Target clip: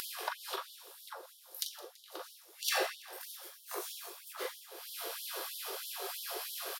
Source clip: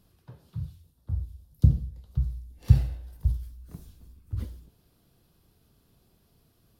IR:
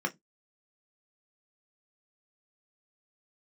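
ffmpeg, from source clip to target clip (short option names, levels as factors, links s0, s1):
-filter_complex "[0:a]flanger=delay=18.5:depth=3:speed=1.1,acompressor=mode=upward:threshold=0.0158:ratio=2.5,aecho=1:1:166|332|498|664:0.106|0.0583|0.032|0.0176,asplit=2[s0][s1];[1:a]atrim=start_sample=2205,adelay=40[s2];[s1][s2]afir=irnorm=-1:irlink=0,volume=0.473[s3];[s0][s3]amix=inputs=2:normalize=0,afftfilt=real='re*gte(b*sr/1024,340*pow(3000/340,0.5+0.5*sin(2*PI*3.1*pts/sr)))':imag='im*gte(b*sr/1024,340*pow(3000/340,0.5+0.5*sin(2*PI*3.1*pts/sr)))':win_size=1024:overlap=0.75,volume=6.68"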